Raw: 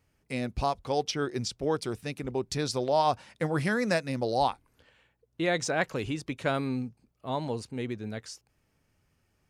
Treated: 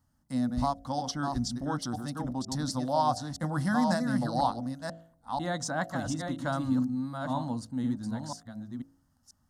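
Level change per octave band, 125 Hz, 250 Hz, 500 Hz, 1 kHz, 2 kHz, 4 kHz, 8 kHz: +1.5, +3.5, -6.0, 0.0, -4.5, -3.0, -0.5 dB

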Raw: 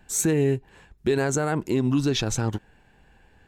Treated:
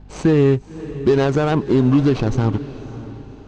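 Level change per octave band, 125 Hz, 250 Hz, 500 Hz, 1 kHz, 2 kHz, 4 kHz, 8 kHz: +8.0 dB, +8.0 dB, +7.5 dB, +6.5 dB, +2.5 dB, -2.0 dB, under -10 dB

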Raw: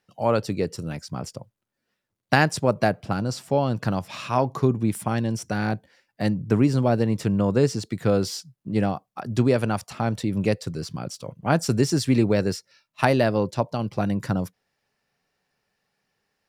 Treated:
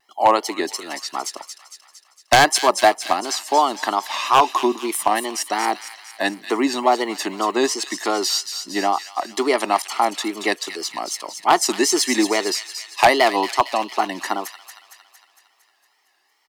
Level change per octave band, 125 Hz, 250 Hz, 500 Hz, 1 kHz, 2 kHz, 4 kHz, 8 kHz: under -15 dB, -2.0 dB, +2.5 dB, +11.0 dB, +7.5 dB, +12.0 dB, +12.5 dB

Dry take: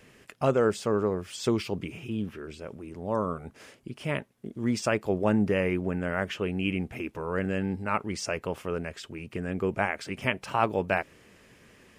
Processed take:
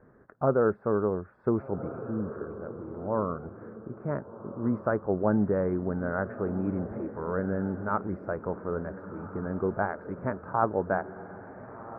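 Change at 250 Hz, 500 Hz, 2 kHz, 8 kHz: -0.5 dB, 0.0 dB, -6.0 dB, under -35 dB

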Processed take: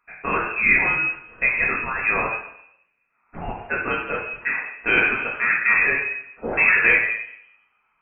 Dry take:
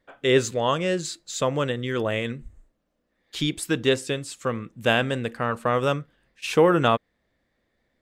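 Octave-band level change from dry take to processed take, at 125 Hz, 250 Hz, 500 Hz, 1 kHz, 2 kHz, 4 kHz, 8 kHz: -10.5 dB, -7.5 dB, -8.0 dB, 0.0 dB, +13.0 dB, -11.0 dB, under -40 dB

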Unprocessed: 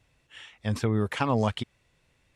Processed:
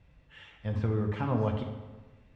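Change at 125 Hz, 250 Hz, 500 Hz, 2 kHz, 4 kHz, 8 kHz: -1.0 dB, -4.0 dB, -3.5 dB, -9.0 dB, -12.5 dB, under -20 dB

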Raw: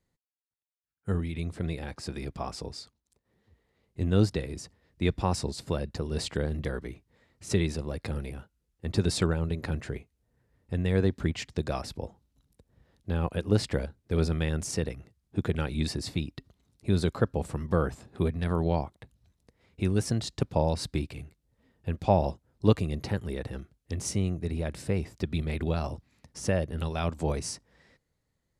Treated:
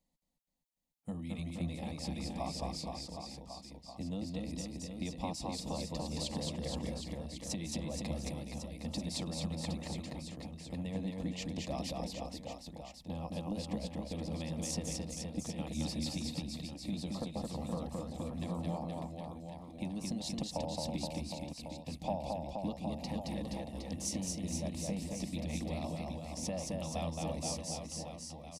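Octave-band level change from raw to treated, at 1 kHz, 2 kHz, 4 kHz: -7.0, -11.5, -3.0 dB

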